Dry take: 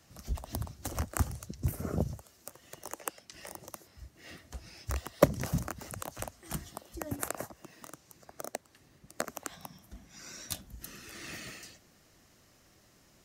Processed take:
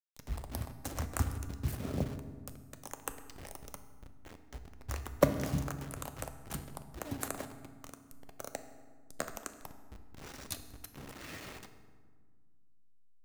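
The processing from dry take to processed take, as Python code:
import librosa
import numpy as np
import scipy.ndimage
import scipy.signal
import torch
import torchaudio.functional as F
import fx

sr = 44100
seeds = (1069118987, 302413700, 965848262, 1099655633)

y = fx.delta_hold(x, sr, step_db=-38.5)
y = fx.rev_fdn(y, sr, rt60_s=1.6, lf_ratio=1.55, hf_ratio=0.6, size_ms=22.0, drr_db=8.0)
y = F.gain(torch.from_numpy(y), -3.0).numpy()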